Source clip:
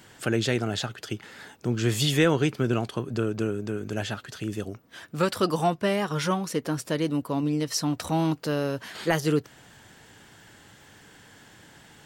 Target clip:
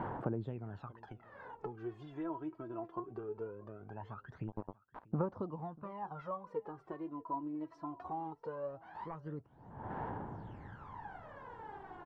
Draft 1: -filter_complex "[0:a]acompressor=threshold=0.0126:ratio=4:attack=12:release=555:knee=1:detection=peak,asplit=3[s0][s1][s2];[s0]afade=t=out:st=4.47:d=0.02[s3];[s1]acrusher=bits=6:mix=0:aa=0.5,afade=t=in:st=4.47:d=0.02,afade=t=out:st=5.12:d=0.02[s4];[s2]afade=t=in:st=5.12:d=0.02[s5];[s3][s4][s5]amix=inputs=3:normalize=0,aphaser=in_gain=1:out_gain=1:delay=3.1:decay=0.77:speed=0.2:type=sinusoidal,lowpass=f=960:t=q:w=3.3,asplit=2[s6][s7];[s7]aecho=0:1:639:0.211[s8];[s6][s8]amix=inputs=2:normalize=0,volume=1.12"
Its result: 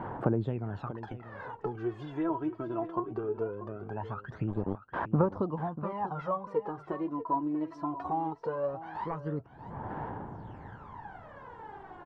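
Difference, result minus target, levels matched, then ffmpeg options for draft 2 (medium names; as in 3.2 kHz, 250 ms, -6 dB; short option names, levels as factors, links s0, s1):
compression: peak gain reduction -9 dB; echo-to-direct +9.5 dB
-filter_complex "[0:a]acompressor=threshold=0.00316:ratio=4:attack=12:release=555:knee=1:detection=peak,asplit=3[s0][s1][s2];[s0]afade=t=out:st=4.47:d=0.02[s3];[s1]acrusher=bits=6:mix=0:aa=0.5,afade=t=in:st=4.47:d=0.02,afade=t=out:st=5.12:d=0.02[s4];[s2]afade=t=in:st=5.12:d=0.02[s5];[s3][s4][s5]amix=inputs=3:normalize=0,aphaser=in_gain=1:out_gain=1:delay=3.1:decay=0.77:speed=0.2:type=sinusoidal,lowpass=f=960:t=q:w=3.3,asplit=2[s6][s7];[s7]aecho=0:1:639:0.0708[s8];[s6][s8]amix=inputs=2:normalize=0,volume=1.12"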